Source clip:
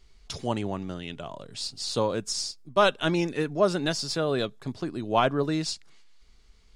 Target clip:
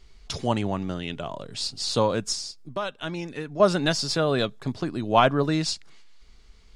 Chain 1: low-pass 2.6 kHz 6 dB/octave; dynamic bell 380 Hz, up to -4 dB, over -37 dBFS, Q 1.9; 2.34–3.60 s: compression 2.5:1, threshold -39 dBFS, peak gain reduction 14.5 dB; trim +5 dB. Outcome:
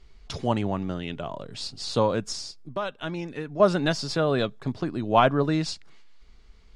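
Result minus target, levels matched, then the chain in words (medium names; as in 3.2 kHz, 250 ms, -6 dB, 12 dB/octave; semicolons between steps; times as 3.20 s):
8 kHz band -5.5 dB
low-pass 8 kHz 6 dB/octave; dynamic bell 380 Hz, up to -4 dB, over -37 dBFS, Q 1.9; 2.34–3.60 s: compression 2.5:1, threshold -39 dBFS, peak gain reduction 14.5 dB; trim +5 dB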